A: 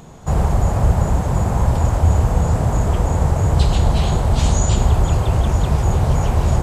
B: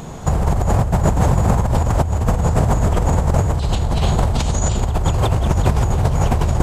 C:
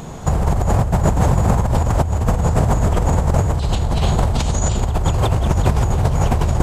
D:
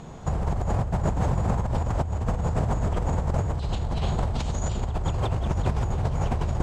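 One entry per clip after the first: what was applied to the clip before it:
compressor whose output falls as the input rises −20 dBFS, ratio −1; level +4 dB
no processing that can be heard
high-frequency loss of the air 59 metres; level −9 dB

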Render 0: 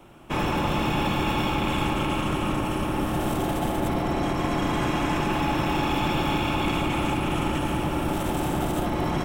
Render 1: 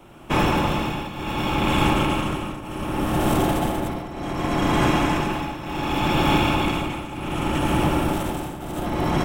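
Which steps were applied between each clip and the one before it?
shaped tremolo triangle 0.67 Hz, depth 85%
level +6.5 dB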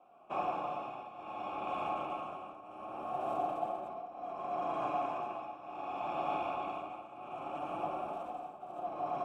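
flanger 0.24 Hz, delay 3.8 ms, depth 8.6 ms, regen −42%
formant filter a
parametric band 2,900 Hz −7.5 dB 1.4 octaves
level +1 dB

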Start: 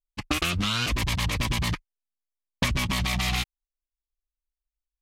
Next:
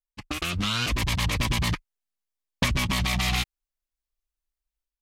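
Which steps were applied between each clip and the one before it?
automatic gain control gain up to 9 dB
level −7 dB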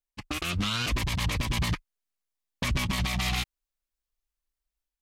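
brickwall limiter −19 dBFS, peak gain reduction 8 dB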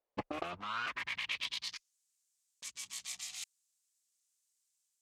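compressor whose output falls as the input rises −38 dBFS, ratio −1
band-pass filter sweep 550 Hz → 7,400 Hz, 0:00.29–0:01.94
level +8.5 dB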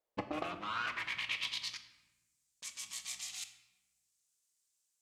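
rectangular room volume 560 cubic metres, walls mixed, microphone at 0.56 metres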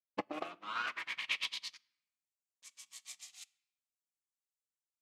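high-pass filter 230 Hz 12 dB per octave
expander for the loud parts 2.5 to 1, over −51 dBFS
level +3.5 dB

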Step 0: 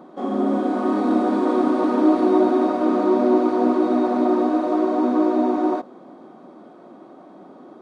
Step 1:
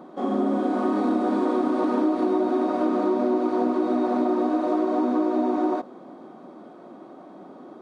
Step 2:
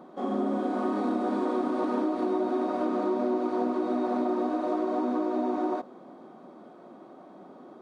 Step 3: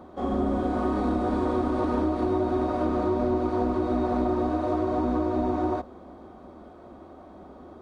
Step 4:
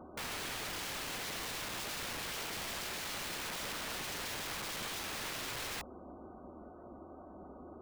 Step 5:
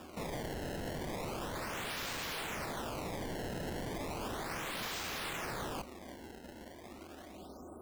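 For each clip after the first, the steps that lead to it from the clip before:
downward compressor, threshold −19 dBFS, peak gain reduction 7.5 dB
parametric band 300 Hz −3 dB 0.31 octaves; level −4 dB
sub-octave generator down 2 octaves, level −5 dB; level +2 dB
gate on every frequency bin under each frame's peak −25 dB strong; wrap-around overflow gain 31 dB; level −5 dB
sample-and-hold swept by an LFO 21×, swing 160% 0.35 Hz; level +1 dB

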